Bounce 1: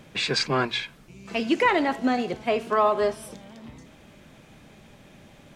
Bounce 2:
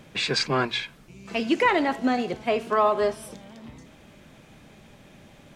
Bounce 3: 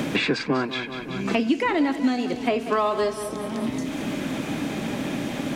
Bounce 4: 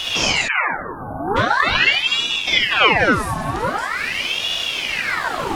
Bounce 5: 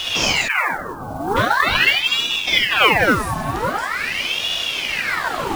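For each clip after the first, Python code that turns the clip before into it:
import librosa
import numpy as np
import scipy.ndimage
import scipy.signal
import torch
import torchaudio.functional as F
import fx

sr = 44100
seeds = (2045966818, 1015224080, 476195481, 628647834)

y1 = x
y2 = fx.peak_eq(y1, sr, hz=280.0, db=10.5, octaves=0.45)
y2 = fx.echo_feedback(y2, sr, ms=187, feedback_pct=44, wet_db=-14)
y2 = fx.band_squash(y2, sr, depth_pct=100)
y2 = F.gain(torch.from_numpy(y2), -1.5).numpy()
y3 = fx.rev_freeverb(y2, sr, rt60_s=0.66, hf_ratio=0.45, predelay_ms=5, drr_db=-4.5)
y3 = fx.spec_erase(y3, sr, start_s=0.48, length_s=0.88, low_hz=1100.0, high_hz=10000.0)
y3 = fx.ring_lfo(y3, sr, carrier_hz=1800.0, swing_pct=75, hz=0.44)
y3 = F.gain(torch.from_numpy(y3), 3.0).numpy()
y4 = fx.mod_noise(y3, sr, seeds[0], snr_db=23)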